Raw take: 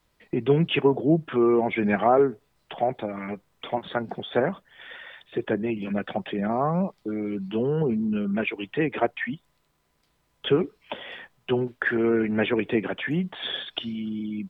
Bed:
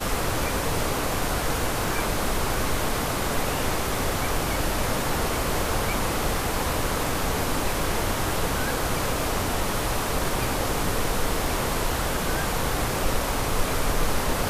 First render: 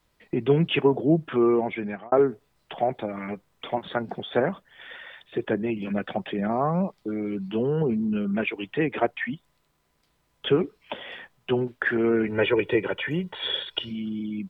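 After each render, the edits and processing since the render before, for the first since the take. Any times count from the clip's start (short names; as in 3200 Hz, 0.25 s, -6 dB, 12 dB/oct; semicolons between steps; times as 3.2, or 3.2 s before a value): 1.48–2.12 fade out; 12.27–13.91 comb 2.1 ms, depth 70%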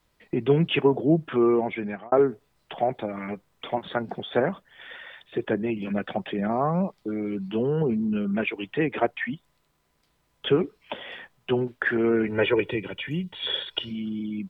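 12.71–13.47 band shelf 830 Hz -10 dB 2.6 oct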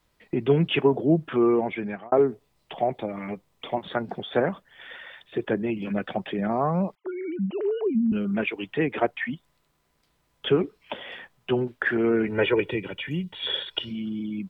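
2.13–3.88 bell 1500 Hz -6.5 dB 0.47 oct; 6.95–8.12 sine-wave speech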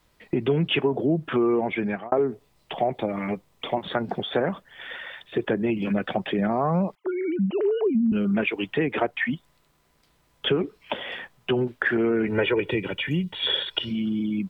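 in parallel at -2 dB: limiter -17.5 dBFS, peak gain reduction 10 dB; on the sum: compressor 3:1, threshold -20 dBFS, peak gain reduction 6.5 dB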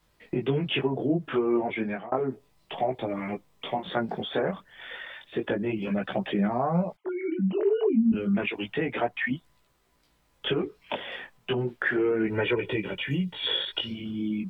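chorus voices 2, 0.32 Hz, delay 19 ms, depth 4 ms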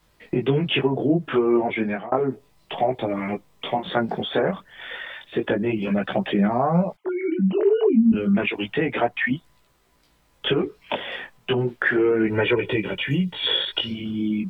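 gain +5.5 dB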